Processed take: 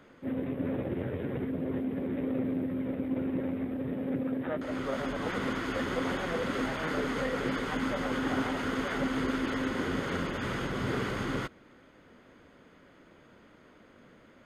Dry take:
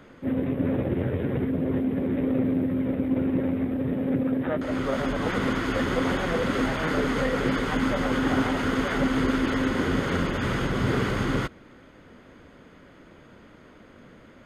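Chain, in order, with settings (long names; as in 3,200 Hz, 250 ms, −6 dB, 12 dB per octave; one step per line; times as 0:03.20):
low-shelf EQ 150 Hz −6 dB
level −5.5 dB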